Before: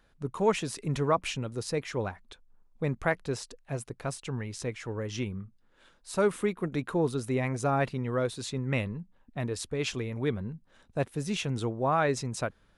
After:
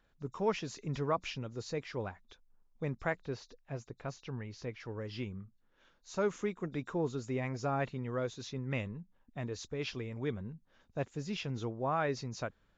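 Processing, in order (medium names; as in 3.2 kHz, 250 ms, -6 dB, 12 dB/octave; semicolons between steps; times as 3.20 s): knee-point frequency compression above 3.5 kHz 1.5:1; 3.17–4.80 s: distance through air 85 m; resampled via 16 kHz; trim -6.5 dB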